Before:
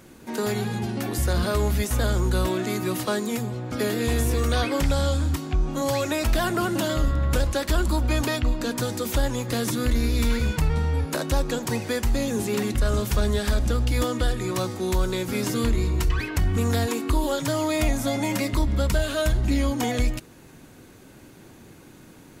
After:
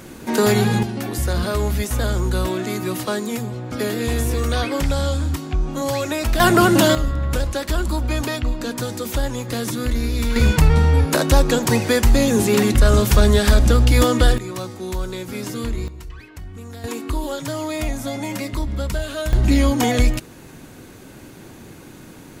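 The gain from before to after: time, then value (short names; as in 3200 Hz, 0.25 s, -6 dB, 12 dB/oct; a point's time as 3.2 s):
+10 dB
from 0.83 s +2 dB
from 6.4 s +11 dB
from 6.95 s +1 dB
from 10.36 s +9 dB
from 14.38 s -2.5 dB
from 15.88 s -13 dB
from 16.84 s -1.5 dB
from 19.33 s +7 dB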